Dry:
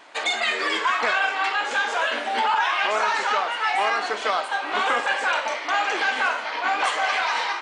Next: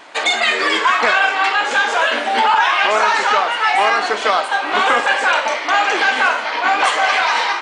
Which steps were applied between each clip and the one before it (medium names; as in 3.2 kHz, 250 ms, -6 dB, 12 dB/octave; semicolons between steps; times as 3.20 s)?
bass shelf 190 Hz +3.5 dB; trim +7.5 dB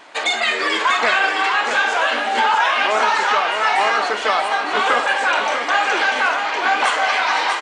delay 642 ms -6 dB; trim -3 dB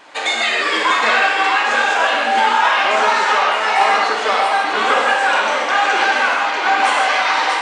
reverberation, pre-delay 3 ms, DRR -0.5 dB; trim -1 dB